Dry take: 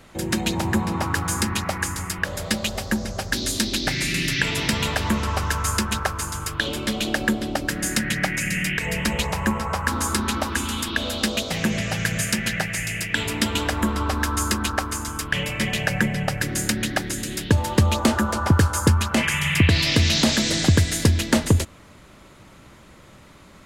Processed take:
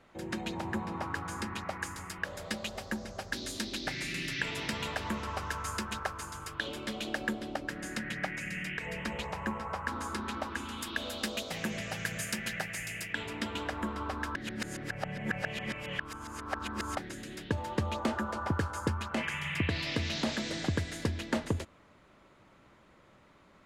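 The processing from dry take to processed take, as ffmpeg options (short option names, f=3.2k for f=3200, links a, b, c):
-filter_complex "[0:a]asettb=1/sr,asplit=3[a][b][c];[a]atrim=end=1.824[d];[b]atrim=start=1.82:end=7.56,asetpts=PTS-STARTPTS,afade=t=in:d=0.004:c=qsin,afade=t=out:st=5.736:d=0.004:c=qsin,highshelf=f=4.5k:g=6.5[e];[c]atrim=start=7.556[f];[d][e]acrossfade=d=0.004:c1=hsin:c2=qsin[g];[g][f]acrossfade=d=0.004:c1=qsin:c2=hsin,asettb=1/sr,asplit=3[h][i][j];[h]atrim=end=10.814[k];[i]atrim=start=10.81:end=13.13,asetpts=PTS-STARTPTS,afade=t=in:d=0.004:c=qsin,afade=t=out:st=2.316:d=0.004:c=qsin,aemphasis=mode=production:type=50kf[l];[j]atrim=start=13.126[m];[k][l]acrossfade=d=0.004:c1=hsin:c2=qsin[n];[n][m]acrossfade=d=0.004:c1=qsin:c2=hsin,asplit=3[o][p][q];[o]atrim=end=14.352[r];[p]atrim=start=14.348:end=16.972,asetpts=PTS-STARTPTS,areverse[s];[q]atrim=start=16.968[t];[r][s]acrossfade=d=0.004:c1=hsin:c2=hsin[u];[u][t]acrossfade=d=0.004:c1=hsin:c2=hsin,lowpass=f=1.9k:p=1,lowshelf=f=230:g=-9,volume=-8.5dB"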